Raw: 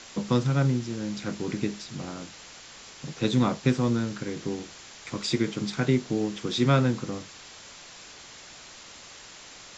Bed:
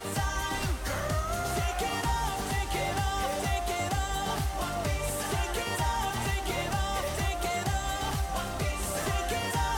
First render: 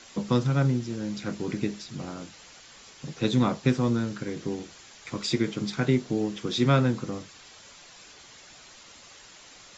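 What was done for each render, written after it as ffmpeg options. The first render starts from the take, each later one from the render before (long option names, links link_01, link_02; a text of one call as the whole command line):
ffmpeg -i in.wav -af "afftdn=noise_reduction=6:noise_floor=-47" out.wav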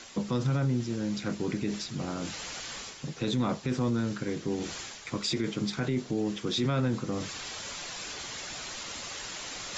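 ffmpeg -i in.wav -af "areverse,acompressor=mode=upward:threshold=-28dB:ratio=2.5,areverse,alimiter=limit=-20dB:level=0:latency=1:release=19" out.wav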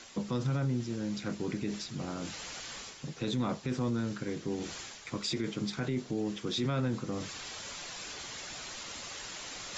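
ffmpeg -i in.wav -af "volume=-3.5dB" out.wav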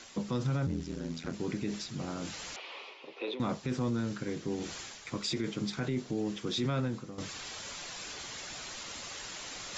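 ffmpeg -i in.wav -filter_complex "[0:a]asettb=1/sr,asplit=3[link_01][link_02][link_03];[link_01]atrim=end=0.664[link_04];[link_02]atrim=start=0.66:end=1.34,asetpts=PTS-STARTPTS,afade=type=in:duration=0.004:curve=qsin,afade=type=out:start_time=0.676:duration=0.004:curve=qsin,aeval=exprs='val(0)*sin(2*PI*42*n/s)':channel_layout=same[link_05];[link_03]atrim=start=1.336[link_06];[link_04][link_05]acrossfade=duration=0.004:curve1=hsin:curve2=qsin[link_07];[link_07][link_06]acrossfade=duration=0.004:curve1=qsin:curve2=hsin,asettb=1/sr,asplit=3[link_08][link_09][link_10];[link_08]atrim=end=2.564[link_11];[link_09]atrim=start=2.56:end=3.4,asetpts=PTS-STARTPTS,afade=type=in:duration=0.004:curve=qsin,afade=type=out:start_time=0.836:duration=0.004:curve=qsin,highpass=frequency=370:width=0.5412,highpass=frequency=370:width=1.3066,equalizer=frequency=380:width_type=q:width=4:gain=5,equalizer=frequency=560:width_type=q:width=4:gain=3,equalizer=frequency=970:width_type=q:width=4:gain=5,equalizer=frequency=1600:width_type=q:width=4:gain=-10,equalizer=frequency=2500:width_type=q:width=4:gain=7,lowpass=frequency=3600:width=0.5412,lowpass=frequency=3600:width=1.3066[link_12];[link_10]atrim=start=3.396[link_13];[link_11][link_12]acrossfade=duration=0.004:curve1=hsin:curve2=qsin[link_14];[link_14][link_13]acrossfade=duration=0.004:curve1=qsin:curve2=hsin,asplit=2[link_15][link_16];[link_15]atrim=end=7.18,asetpts=PTS-STARTPTS,afade=type=out:start_time=6.77:duration=0.41:silence=0.223872[link_17];[link_16]atrim=start=7.18,asetpts=PTS-STARTPTS,afade=type=in:duration=0.004:curve=hsin:silence=0.223872[link_18];[link_17][link_18]concat=n=2:v=0:a=1" out.wav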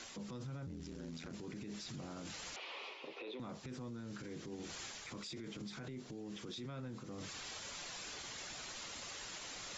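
ffmpeg -i in.wav -af "acompressor=threshold=-38dB:ratio=6,alimiter=level_in=14.5dB:limit=-24dB:level=0:latency=1:release=30,volume=-14.5dB" out.wav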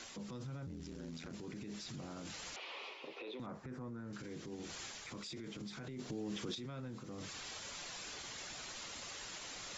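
ffmpeg -i in.wav -filter_complex "[0:a]asettb=1/sr,asplit=3[link_01][link_02][link_03];[link_01]atrim=end=3.464[link_04];[link_02]atrim=start=3.46:end=4.13,asetpts=PTS-STARTPTS,afade=type=in:duration=0.004:curve=qsin,afade=type=out:start_time=0.666:duration=0.004:curve=qsin,highshelf=frequency=2300:width_type=q:width=1.5:gain=-11[link_05];[link_03]atrim=start=4.126[link_06];[link_04][link_05]acrossfade=duration=0.004:curve1=hsin:curve2=qsin[link_07];[link_07][link_06]acrossfade=duration=0.004:curve1=qsin:curve2=hsin,asplit=3[link_08][link_09][link_10];[link_08]atrim=end=5.992[link_11];[link_09]atrim=start=5.988:end=6.552,asetpts=PTS-STARTPTS,volume=5.5dB[link_12];[link_10]atrim=start=6.548[link_13];[link_11][link_12]acrossfade=duration=0.004:curve1=hsin:curve2=hsin[link_14];[link_14][link_13]acrossfade=duration=0.004:curve1=hsin:curve2=hsin" out.wav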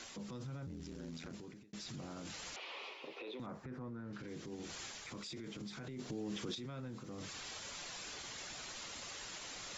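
ffmpeg -i in.wav -filter_complex "[0:a]asettb=1/sr,asplit=3[link_01][link_02][link_03];[link_01]atrim=end=3.654[link_04];[link_02]atrim=start=3.65:end=4.28,asetpts=PTS-STARTPTS,afade=type=in:duration=0.004:curve=qsin,afade=type=out:start_time=0.626:duration=0.004:curve=qsin,lowpass=4300[link_05];[link_03]atrim=start=4.276[link_06];[link_04][link_05]acrossfade=duration=0.004:curve1=hsin:curve2=qsin[link_07];[link_07][link_06]acrossfade=duration=0.004:curve1=qsin:curve2=hsin,asplit=2[link_08][link_09];[link_08]atrim=end=1.73,asetpts=PTS-STARTPTS,afade=type=out:start_time=1.29:duration=0.44[link_10];[link_09]atrim=start=1.73,asetpts=PTS-STARTPTS,afade=type=in:duration=0.004:curve=hsin[link_11];[link_10][link_11]concat=n=2:v=0:a=1" out.wav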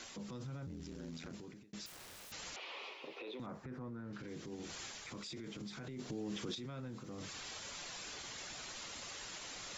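ffmpeg -i in.wav -filter_complex "[0:a]asettb=1/sr,asplit=3[link_01][link_02][link_03];[link_01]atrim=end=1.864[link_04];[link_02]atrim=start=1.86:end=2.32,asetpts=PTS-STARTPTS,afade=type=in:duration=0.004:curve=qsin,afade=type=out:start_time=0.456:duration=0.004:curve=qsin,aeval=exprs='(mod(282*val(0)+1,2)-1)/282':channel_layout=same[link_05];[link_03]atrim=start=2.316[link_06];[link_04][link_05]acrossfade=duration=0.004:curve1=hsin:curve2=qsin[link_07];[link_07][link_06]acrossfade=duration=0.004:curve1=qsin:curve2=hsin" out.wav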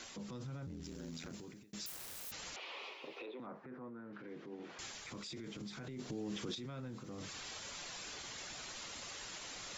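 ffmpeg -i in.wav -filter_complex "[0:a]asettb=1/sr,asplit=3[link_01][link_02][link_03];[link_01]atrim=end=0.844[link_04];[link_02]atrim=start=0.84:end=2.31,asetpts=PTS-STARTPTS,afade=type=in:duration=0.004:curve=qsin,afade=type=out:start_time=1.466:duration=0.004:curve=qsin,highshelf=frequency=7600:gain=11.5[link_05];[link_03]atrim=start=2.306[link_06];[link_04][link_05]acrossfade=duration=0.004:curve1=hsin:curve2=qsin[link_07];[link_07][link_06]acrossfade=duration=0.004:curve1=qsin:curve2=hsin,asettb=1/sr,asplit=3[link_08][link_09][link_10];[link_08]atrim=end=3.264[link_11];[link_09]atrim=start=3.26:end=4.79,asetpts=PTS-STARTPTS,afade=type=in:duration=0.004:curve=qsin,afade=type=out:start_time=1.526:duration=0.004:curve=qsin,highpass=240,lowpass=2200[link_12];[link_10]atrim=start=4.786[link_13];[link_11][link_12]acrossfade=duration=0.004:curve1=hsin:curve2=qsin[link_14];[link_14][link_13]acrossfade=duration=0.004:curve1=qsin:curve2=hsin" out.wav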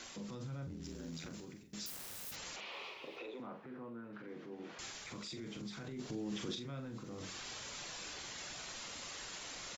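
ffmpeg -i in.wav -filter_complex "[0:a]asplit=2[link_01][link_02];[link_02]adelay=43,volume=-8dB[link_03];[link_01][link_03]amix=inputs=2:normalize=0,asplit=2[link_04][link_05];[link_05]adelay=858,lowpass=frequency=1500:poles=1,volume=-20dB,asplit=2[link_06][link_07];[link_07]adelay=858,lowpass=frequency=1500:poles=1,volume=0.33,asplit=2[link_08][link_09];[link_09]adelay=858,lowpass=frequency=1500:poles=1,volume=0.33[link_10];[link_04][link_06][link_08][link_10]amix=inputs=4:normalize=0" out.wav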